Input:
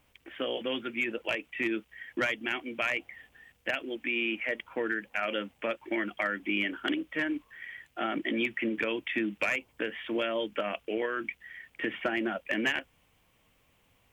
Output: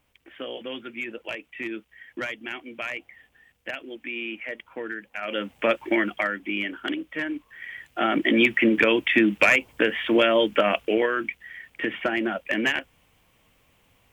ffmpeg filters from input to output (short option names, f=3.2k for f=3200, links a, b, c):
-af "volume=21dB,afade=t=in:st=5.21:d=0.53:silence=0.223872,afade=t=out:st=5.74:d=0.66:silence=0.334965,afade=t=in:st=7.43:d=1.06:silence=0.316228,afade=t=out:st=10.75:d=0.57:silence=0.473151"